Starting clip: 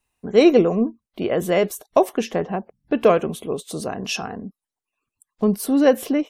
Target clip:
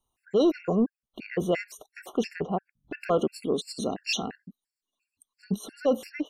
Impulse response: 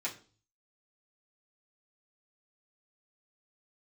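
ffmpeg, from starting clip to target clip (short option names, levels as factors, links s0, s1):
-filter_complex "[0:a]acrossover=split=6600[s0][s1];[s1]acompressor=threshold=0.00447:ratio=4:attack=1:release=60[s2];[s0][s2]amix=inputs=2:normalize=0,asettb=1/sr,asplit=3[s3][s4][s5];[s3]atrim=end=3.184[s6];[s4]atrim=start=3.18:end=5.59,asetpts=PTS-STARTPTS,afade=t=in:d=0.004:c=qsin,afade=t=out:st=2.406:d=0.004:c=qsin,equalizer=f=125:t=o:w=1:g=-6,equalizer=f=250:t=o:w=1:g=7,equalizer=f=1000:t=o:w=1:g=-5,equalizer=f=4000:t=o:w=1:g=10,equalizer=f=8000:t=o:w=1:g=4[s7];[s5]atrim=start=5.586[s8];[s6][s7]acrossfade=d=0.004:c1=hsin:c2=qsin[s9];[s9][s8]acrossfade=d=0.004:c1=qsin:c2=hsin,acontrast=48,alimiter=limit=0.447:level=0:latency=1:release=11,afftfilt=real='re*gt(sin(2*PI*2.9*pts/sr)*(1-2*mod(floor(b*sr/1024/1400),2)),0)':imag='im*gt(sin(2*PI*2.9*pts/sr)*(1-2*mod(floor(b*sr/1024/1400),2)),0)':win_size=1024:overlap=0.75,volume=0.398"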